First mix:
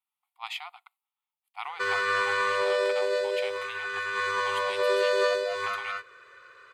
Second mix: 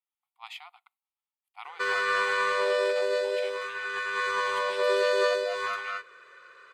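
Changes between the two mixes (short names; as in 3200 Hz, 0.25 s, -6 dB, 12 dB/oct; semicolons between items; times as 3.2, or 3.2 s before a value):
speech -6.5 dB; master: add HPF 180 Hz 12 dB/oct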